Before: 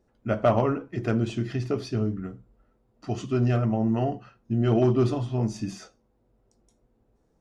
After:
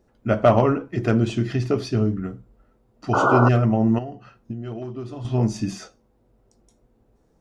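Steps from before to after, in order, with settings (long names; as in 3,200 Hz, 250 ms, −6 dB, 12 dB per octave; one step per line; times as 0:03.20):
0:03.13–0:03.49: sound drawn into the spectrogram noise 260–1,500 Hz −24 dBFS
0:03.98–0:05.25: downward compressor 20 to 1, threshold −34 dBFS, peak gain reduction 18 dB
level +5.5 dB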